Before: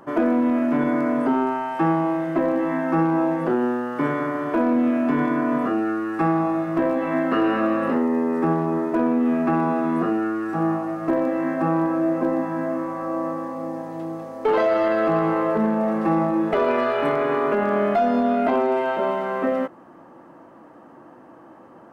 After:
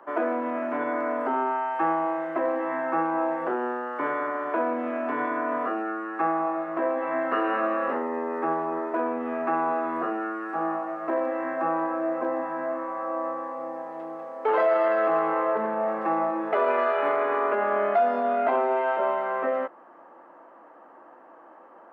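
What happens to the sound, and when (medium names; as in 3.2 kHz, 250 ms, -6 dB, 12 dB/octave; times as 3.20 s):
5.82–7.22 s: treble shelf 3.7 kHz -6 dB
whole clip: high-pass 170 Hz 24 dB/octave; three-band isolator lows -18 dB, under 440 Hz, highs -16 dB, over 2.5 kHz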